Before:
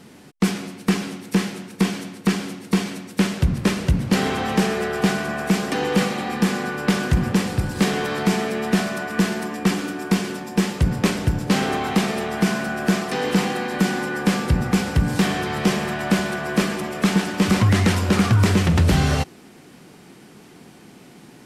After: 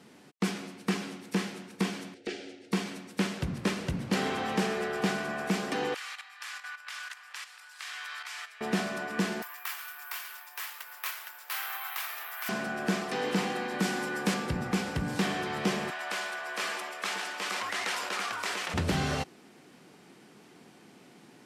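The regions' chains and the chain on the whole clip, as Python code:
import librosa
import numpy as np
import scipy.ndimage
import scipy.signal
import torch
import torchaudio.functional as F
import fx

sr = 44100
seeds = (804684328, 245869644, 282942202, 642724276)

y = fx.chain(x, sr, fx.air_absorb(metres=97.0),
    fx.fixed_phaser(hz=440.0, stages=4), at=(2.14, 2.72))
y = fx.chain(y, sr, fx.highpass(hz=1200.0, slope=24),
    fx.level_steps(step_db=11), at=(5.94, 8.61))
y = fx.chain(y, sr, fx.highpass(hz=1100.0, slope=24),
    fx.tilt_eq(slope=-2.0),
    fx.resample_bad(factor=3, down='none', up='zero_stuff'), at=(9.42, 12.49))
y = fx.chain(y, sr, fx.high_shelf(hz=5800.0, db=9.0),
    fx.doppler_dist(depth_ms=0.11), at=(13.82, 14.34))
y = fx.chain(y, sr, fx.highpass(hz=780.0, slope=12),
    fx.sustainer(db_per_s=29.0), at=(15.9, 18.74))
y = fx.highpass(y, sr, hz=230.0, slope=6)
y = fx.high_shelf(y, sr, hz=9900.0, db=-7.0)
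y = y * librosa.db_to_amplitude(-7.0)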